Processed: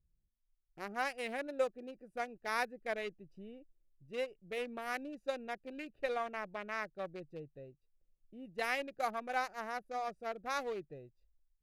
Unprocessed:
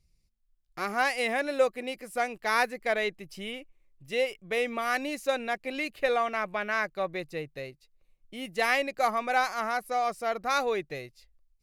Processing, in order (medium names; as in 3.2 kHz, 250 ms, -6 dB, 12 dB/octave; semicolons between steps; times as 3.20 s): local Wiener filter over 41 samples; trim -8.5 dB